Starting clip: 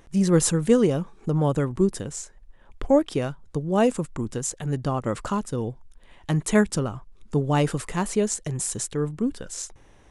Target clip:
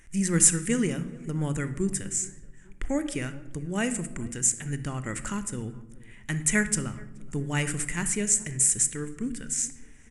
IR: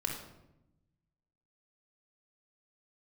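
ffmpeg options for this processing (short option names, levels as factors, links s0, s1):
-filter_complex "[0:a]equalizer=f=125:t=o:w=1:g=-6,equalizer=f=500:t=o:w=1:g=-12,equalizer=f=1000:t=o:w=1:g=-11,equalizer=f=2000:t=o:w=1:g=11,equalizer=f=4000:t=o:w=1:g=-11,equalizer=f=8000:t=o:w=1:g=11,asplit=2[s0][s1];[s1]adelay=426,lowpass=f=1000:p=1,volume=0.0944,asplit=2[s2][s3];[s3]adelay=426,lowpass=f=1000:p=1,volume=0.38,asplit=2[s4][s5];[s5]adelay=426,lowpass=f=1000:p=1,volume=0.38[s6];[s0][s2][s4][s6]amix=inputs=4:normalize=0,asplit=2[s7][s8];[1:a]atrim=start_sample=2205[s9];[s8][s9]afir=irnorm=-1:irlink=0,volume=0.376[s10];[s7][s10]amix=inputs=2:normalize=0,volume=0.668"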